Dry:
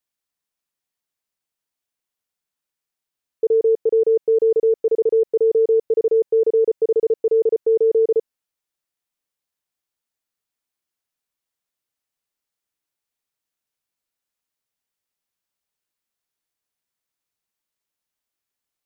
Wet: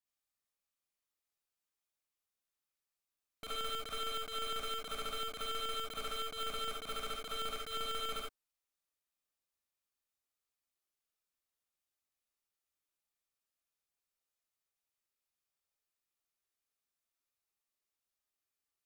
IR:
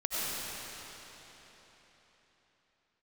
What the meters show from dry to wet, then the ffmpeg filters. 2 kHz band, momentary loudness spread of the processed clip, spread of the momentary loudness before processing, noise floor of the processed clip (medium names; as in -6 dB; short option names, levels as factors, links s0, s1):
no reading, 3 LU, 2 LU, under -85 dBFS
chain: -filter_complex "[0:a]aeval=exprs='(mod(10.6*val(0)+1,2)-1)/10.6':c=same,aeval=exprs='(tanh(63.1*val(0)+0.6)-tanh(0.6))/63.1':c=same[s0];[1:a]atrim=start_sample=2205,afade=t=out:st=0.22:d=0.01,atrim=end_sample=10143,asetrate=83790,aresample=44100[s1];[s0][s1]afir=irnorm=-1:irlink=0,volume=0.841"